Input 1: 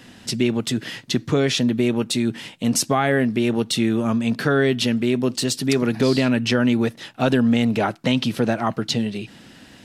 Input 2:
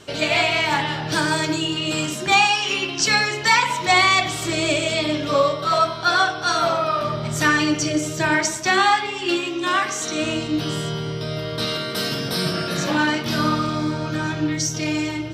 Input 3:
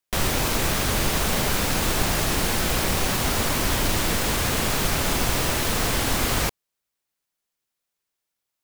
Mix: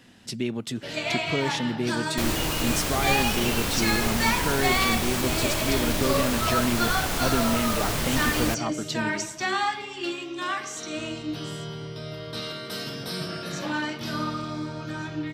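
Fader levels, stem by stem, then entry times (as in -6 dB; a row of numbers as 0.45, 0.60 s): -8.5, -9.0, -4.5 dB; 0.00, 0.75, 2.05 s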